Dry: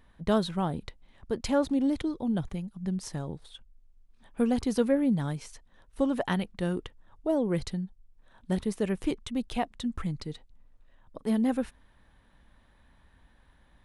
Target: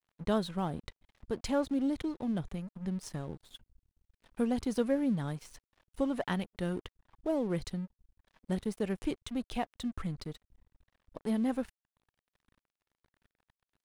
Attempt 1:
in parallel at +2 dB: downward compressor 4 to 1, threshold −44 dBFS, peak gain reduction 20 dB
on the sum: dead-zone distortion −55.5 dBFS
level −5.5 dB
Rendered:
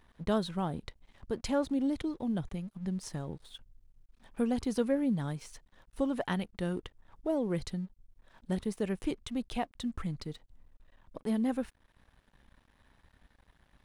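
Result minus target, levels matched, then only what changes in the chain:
dead-zone distortion: distortion −8 dB
change: dead-zone distortion −46 dBFS

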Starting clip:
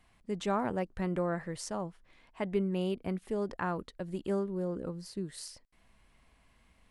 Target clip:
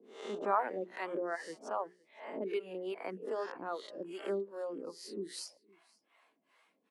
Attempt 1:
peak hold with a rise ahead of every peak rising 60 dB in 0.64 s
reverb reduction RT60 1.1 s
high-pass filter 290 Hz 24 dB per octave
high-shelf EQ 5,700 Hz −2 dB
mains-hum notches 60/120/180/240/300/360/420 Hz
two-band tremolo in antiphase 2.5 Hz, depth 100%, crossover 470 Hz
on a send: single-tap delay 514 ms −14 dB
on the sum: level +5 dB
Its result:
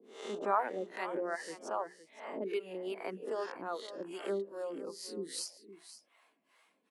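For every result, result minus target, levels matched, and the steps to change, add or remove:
echo-to-direct +12 dB; 8,000 Hz band +5.0 dB
change: single-tap delay 514 ms −26 dB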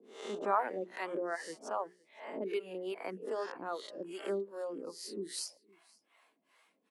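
8,000 Hz band +5.0 dB
change: high-shelf EQ 5,700 Hz −10 dB

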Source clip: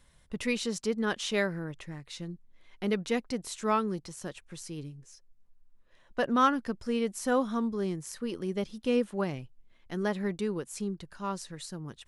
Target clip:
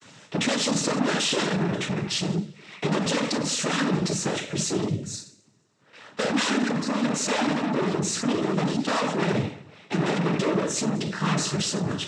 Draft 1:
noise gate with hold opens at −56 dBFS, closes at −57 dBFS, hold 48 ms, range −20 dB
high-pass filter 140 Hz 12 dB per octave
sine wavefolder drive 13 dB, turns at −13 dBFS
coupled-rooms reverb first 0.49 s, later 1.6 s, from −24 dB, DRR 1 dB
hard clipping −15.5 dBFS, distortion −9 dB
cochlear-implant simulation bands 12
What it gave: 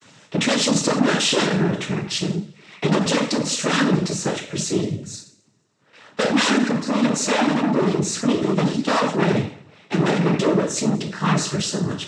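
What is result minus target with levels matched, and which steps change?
hard clipping: distortion −5 dB
change: hard clipping −22.5 dBFS, distortion −4 dB

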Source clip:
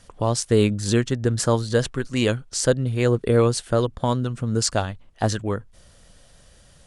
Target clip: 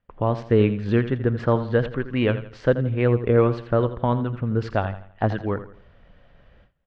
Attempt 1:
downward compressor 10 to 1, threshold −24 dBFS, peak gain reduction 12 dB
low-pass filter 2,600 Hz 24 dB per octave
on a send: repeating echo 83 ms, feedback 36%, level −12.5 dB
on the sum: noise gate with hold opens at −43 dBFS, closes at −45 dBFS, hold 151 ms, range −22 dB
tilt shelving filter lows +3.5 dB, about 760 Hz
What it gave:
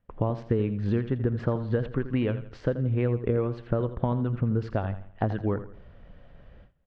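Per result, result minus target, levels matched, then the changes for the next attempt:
downward compressor: peak gain reduction +12 dB; 1,000 Hz band −2.5 dB
remove: downward compressor 10 to 1, threshold −24 dBFS, peak gain reduction 12 dB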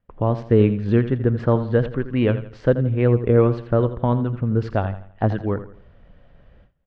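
1,000 Hz band −3.0 dB
remove: tilt shelving filter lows +3.5 dB, about 760 Hz

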